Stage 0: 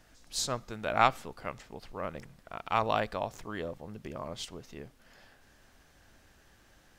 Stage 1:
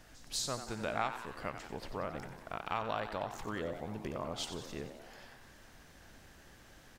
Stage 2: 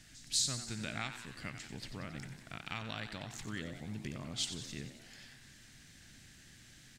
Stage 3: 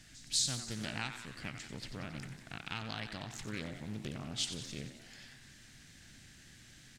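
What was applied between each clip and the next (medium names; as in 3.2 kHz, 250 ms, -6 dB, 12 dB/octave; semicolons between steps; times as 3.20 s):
compression 3:1, threshold -39 dBFS, peak gain reduction 16 dB; on a send: frequency-shifting echo 91 ms, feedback 62%, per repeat +110 Hz, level -10 dB; on the sum: trim +3 dB
graphic EQ 125/250/500/1000/2000/4000/8000 Hz +9/+5/-7/-8/+7/+7/+11 dB; trim -5.5 dB
loudspeaker Doppler distortion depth 0.43 ms; trim +1 dB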